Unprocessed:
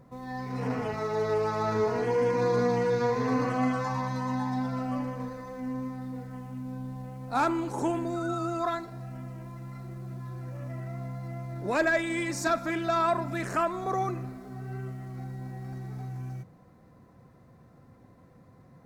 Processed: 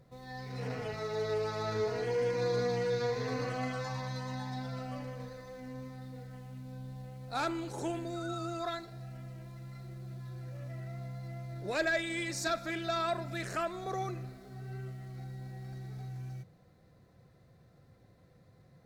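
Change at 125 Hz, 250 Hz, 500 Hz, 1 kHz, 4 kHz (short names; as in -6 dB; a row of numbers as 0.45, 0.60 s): -4.5, -9.5, -5.5, -8.5, +1.5 dB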